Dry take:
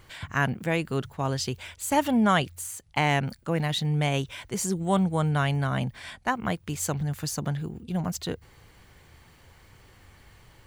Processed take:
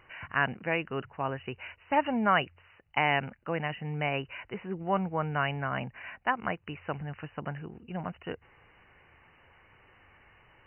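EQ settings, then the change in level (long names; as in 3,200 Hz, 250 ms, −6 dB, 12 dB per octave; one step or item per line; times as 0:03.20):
linear-phase brick-wall low-pass 3,000 Hz
low-shelf EQ 320 Hz −12 dB
0.0 dB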